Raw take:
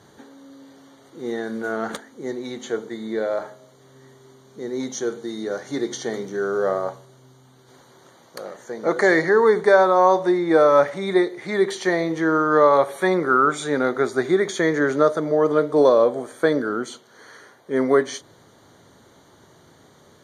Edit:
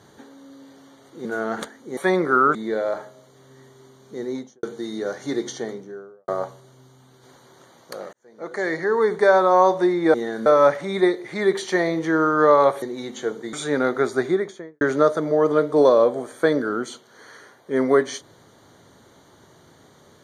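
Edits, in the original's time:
1.25–1.57 s: move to 10.59 s
2.29–3.00 s: swap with 12.95–13.53 s
4.68–5.08 s: studio fade out
5.80–6.73 s: studio fade out
8.58–9.92 s: fade in
14.13–14.81 s: studio fade out

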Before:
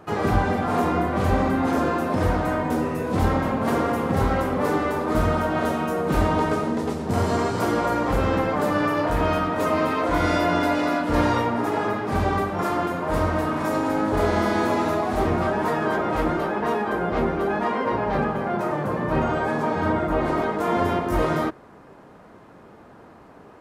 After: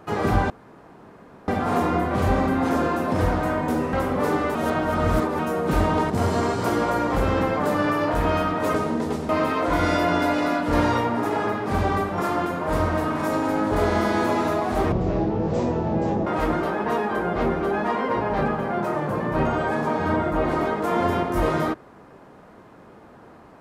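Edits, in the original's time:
0.50 s: insert room tone 0.98 s
2.95–4.34 s: delete
4.96–5.80 s: reverse
6.51–7.06 s: move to 9.70 s
15.33–16.03 s: speed 52%

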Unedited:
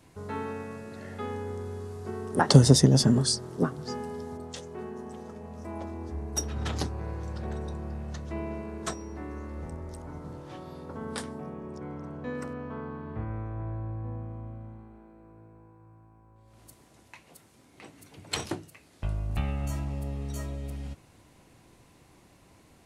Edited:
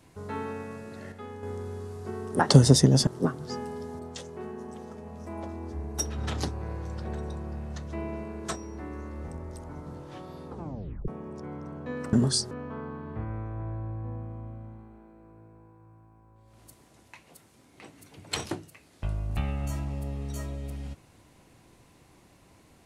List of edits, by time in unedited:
1.12–1.43 s: gain -6.5 dB
3.07–3.45 s: move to 12.51 s
10.86 s: tape stop 0.60 s

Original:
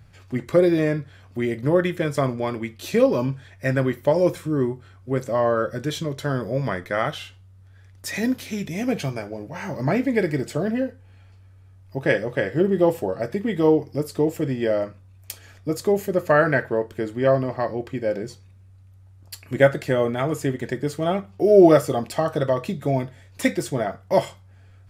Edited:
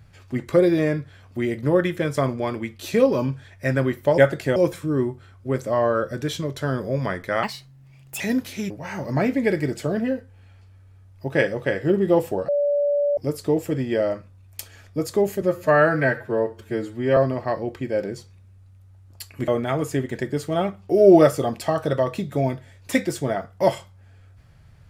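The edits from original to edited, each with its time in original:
7.05–8.14 s: speed 141%
8.64–9.41 s: delete
13.19–13.88 s: bleep 577 Hz -17.5 dBFS
16.12–17.29 s: stretch 1.5×
19.60–19.98 s: move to 4.18 s

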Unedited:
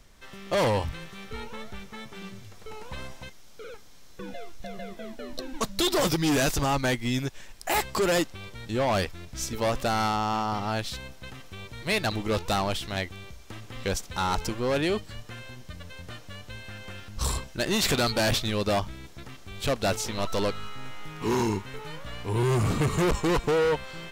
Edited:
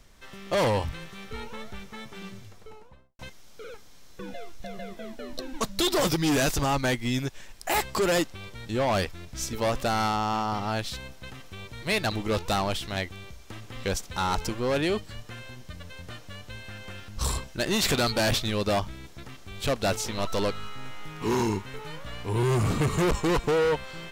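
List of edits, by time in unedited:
2.32–3.19 s: studio fade out

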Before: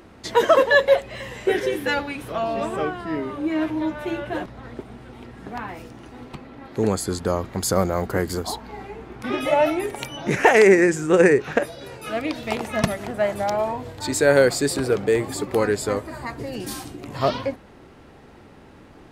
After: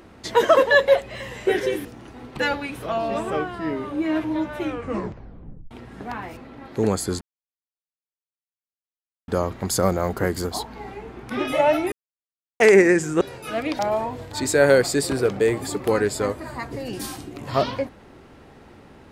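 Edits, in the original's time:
4.05 s: tape stop 1.12 s
5.83–6.37 s: move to 1.85 s
7.21 s: insert silence 2.07 s
9.85–10.53 s: mute
11.14–11.80 s: delete
12.38–13.46 s: delete

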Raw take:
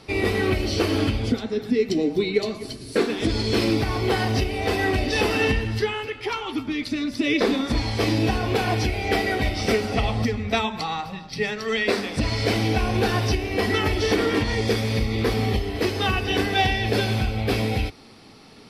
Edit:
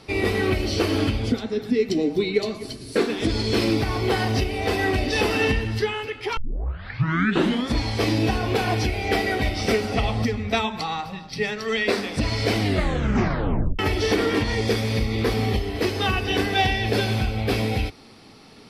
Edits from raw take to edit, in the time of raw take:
6.37 s: tape start 1.36 s
12.58 s: tape stop 1.21 s

